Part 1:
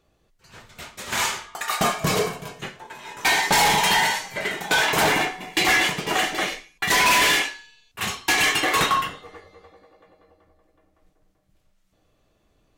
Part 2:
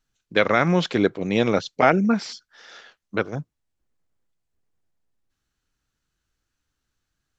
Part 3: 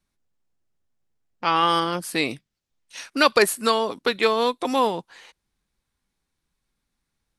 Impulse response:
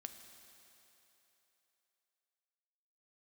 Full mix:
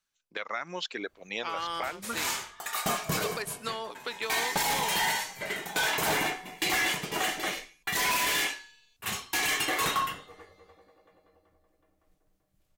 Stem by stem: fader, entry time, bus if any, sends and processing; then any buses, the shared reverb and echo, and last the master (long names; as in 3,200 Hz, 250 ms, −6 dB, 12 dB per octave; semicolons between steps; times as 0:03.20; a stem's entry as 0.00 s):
−7.5 dB, 1.05 s, no bus, no send, high-shelf EQ 9,500 Hz +10 dB
−2.5 dB, 0.00 s, bus A, no send, high-pass filter 570 Hz 6 dB per octave; reverb reduction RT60 1.6 s
−7.5 dB, 0.00 s, bus A, no send, no processing
bus A: 0.0 dB, low-shelf EQ 450 Hz −12 dB; downward compressor 6 to 1, threshold −29 dBFS, peak gain reduction 11 dB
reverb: not used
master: brickwall limiter −20.5 dBFS, peak gain reduction 7.5 dB